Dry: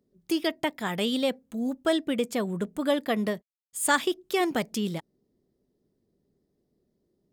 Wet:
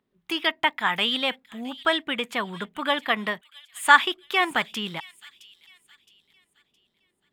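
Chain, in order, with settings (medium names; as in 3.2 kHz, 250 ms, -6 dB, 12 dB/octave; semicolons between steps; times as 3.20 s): high-order bell 1.7 kHz +15.5 dB 2.5 oct; on a send: feedback echo behind a high-pass 666 ms, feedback 37%, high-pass 3.5 kHz, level -14 dB; on the sum: trim -5.5 dB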